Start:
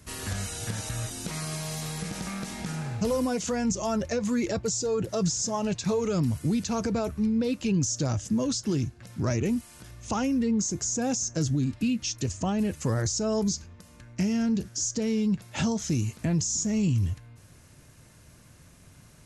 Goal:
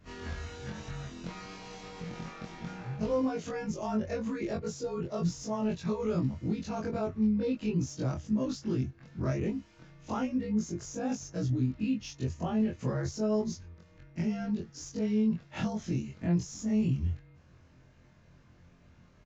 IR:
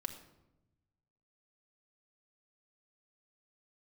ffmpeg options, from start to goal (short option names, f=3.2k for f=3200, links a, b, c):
-filter_complex "[0:a]afftfilt=real='re':imag='-im':win_size=2048:overlap=0.75,acrossover=split=300|1200|2900[a][b][c][d];[d]acrusher=bits=5:mode=log:mix=0:aa=0.000001[e];[a][b][c][e]amix=inputs=4:normalize=0,aresample=16000,aresample=44100,adynamicsmooth=sensitivity=1:basefreq=3.6k"